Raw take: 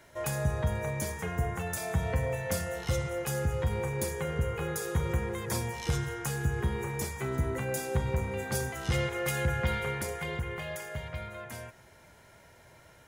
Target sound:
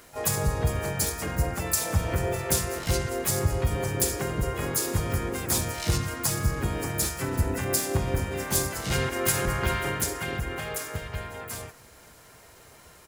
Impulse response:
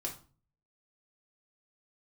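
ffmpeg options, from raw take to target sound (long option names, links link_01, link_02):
-filter_complex "[0:a]crystalizer=i=1.5:c=0,asplit=4[link_01][link_02][link_03][link_04];[link_02]asetrate=29433,aresample=44100,atempo=1.49831,volume=-8dB[link_05];[link_03]asetrate=33038,aresample=44100,atempo=1.33484,volume=-1dB[link_06];[link_04]asetrate=58866,aresample=44100,atempo=0.749154,volume=-7dB[link_07];[link_01][link_05][link_06][link_07]amix=inputs=4:normalize=0"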